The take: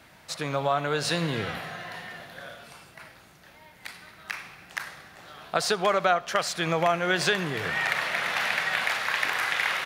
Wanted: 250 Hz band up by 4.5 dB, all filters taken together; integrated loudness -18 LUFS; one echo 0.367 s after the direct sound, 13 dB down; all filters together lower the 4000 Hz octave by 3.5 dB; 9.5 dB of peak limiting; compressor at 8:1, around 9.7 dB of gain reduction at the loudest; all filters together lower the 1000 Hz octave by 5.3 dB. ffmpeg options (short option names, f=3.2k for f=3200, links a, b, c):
-af "equalizer=f=250:t=o:g=8,equalizer=f=1k:t=o:g=-8.5,equalizer=f=4k:t=o:g=-4,acompressor=threshold=-31dB:ratio=8,alimiter=level_in=3dB:limit=-24dB:level=0:latency=1,volume=-3dB,aecho=1:1:367:0.224,volume=19.5dB"